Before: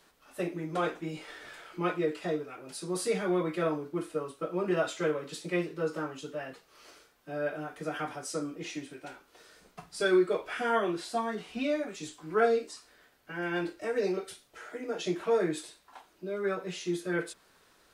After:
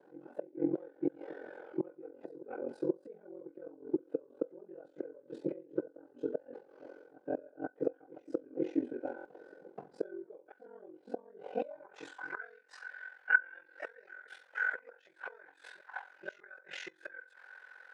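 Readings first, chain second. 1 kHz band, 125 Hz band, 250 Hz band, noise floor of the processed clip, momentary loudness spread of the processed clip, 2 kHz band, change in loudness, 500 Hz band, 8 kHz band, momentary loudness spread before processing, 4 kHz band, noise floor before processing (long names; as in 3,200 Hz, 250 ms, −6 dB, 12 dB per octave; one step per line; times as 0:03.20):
−12.5 dB, −15.0 dB, −6.0 dB, −66 dBFS, 18 LU, +0.5 dB, −7.0 dB, −9.5 dB, below −20 dB, 16 LU, below −15 dB, −65 dBFS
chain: high-pass filter 86 Hz 12 dB per octave
hollow resonant body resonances 540/790/1,500 Hz, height 16 dB, ringing for 35 ms
gate with flip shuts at −21 dBFS, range −29 dB
tuned comb filter 500 Hz, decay 0.16 s, harmonics all, mix 50%
backwards echo 482 ms −19.5 dB
band-pass filter sweep 320 Hz → 1,700 Hz, 0:11.15–0:12.29
ring modulation 22 Hz
buffer that repeats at 0:09.16, samples 1,024, times 3
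level +14 dB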